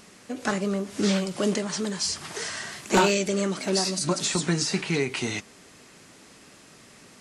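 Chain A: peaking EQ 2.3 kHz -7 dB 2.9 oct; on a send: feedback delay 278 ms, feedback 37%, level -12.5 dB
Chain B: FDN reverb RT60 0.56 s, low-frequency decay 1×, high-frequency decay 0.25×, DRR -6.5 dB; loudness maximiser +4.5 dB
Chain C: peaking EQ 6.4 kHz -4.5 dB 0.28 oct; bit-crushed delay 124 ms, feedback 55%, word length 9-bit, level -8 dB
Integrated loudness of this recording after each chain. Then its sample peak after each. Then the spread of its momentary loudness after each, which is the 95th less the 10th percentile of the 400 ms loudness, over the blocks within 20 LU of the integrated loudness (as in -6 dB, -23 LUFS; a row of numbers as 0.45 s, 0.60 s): -28.0 LUFS, -16.0 LUFS, -25.5 LUFS; -13.5 dBFS, -1.0 dBFS, -10.5 dBFS; 11 LU, 9 LU, 10 LU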